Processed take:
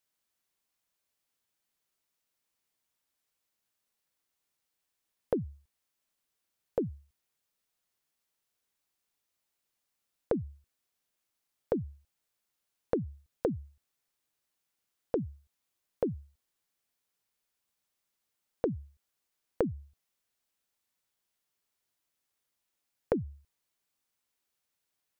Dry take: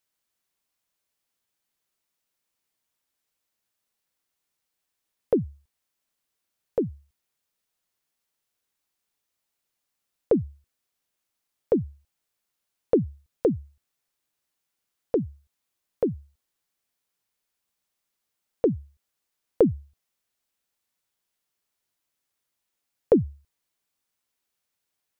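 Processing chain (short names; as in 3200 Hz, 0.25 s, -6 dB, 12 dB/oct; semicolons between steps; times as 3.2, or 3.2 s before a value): compressor 10:1, threshold -24 dBFS, peak gain reduction 11.5 dB; gain -2 dB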